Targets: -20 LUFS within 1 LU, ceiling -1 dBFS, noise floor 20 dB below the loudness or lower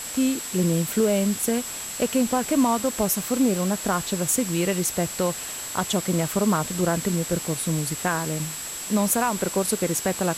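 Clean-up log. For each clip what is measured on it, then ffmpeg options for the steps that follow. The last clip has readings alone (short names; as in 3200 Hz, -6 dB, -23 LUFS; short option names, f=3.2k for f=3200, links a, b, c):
steady tone 7700 Hz; tone level -34 dBFS; noise floor -34 dBFS; noise floor target -44 dBFS; loudness -24.0 LUFS; peak -8.5 dBFS; loudness target -20.0 LUFS
-> -af "bandreject=f=7.7k:w=30"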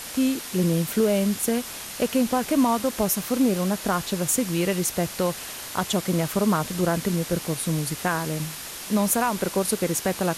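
steady tone none; noise floor -37 dBFS; noise floor target -45 dBFS
-> -af "afftdn=nr=8:nf=-37"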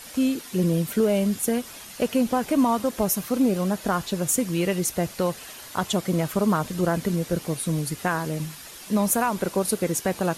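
noise floor -42 dBFS; noise floor target -45 dBFS
-> -af "afftdn=nr=6:nf=-42"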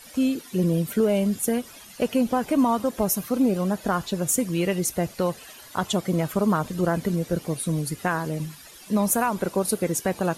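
noise floor -46 dBFS; loudness -24.5 LUFS; peak -9.0 dBFS; loudness target -20.0 LUFS
-> -af "volume=4.5dB"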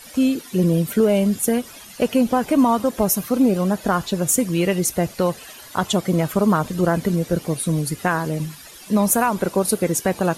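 loudness -20.0 LUFS; peak -4.5 dBFS; noise floor -42 dBFS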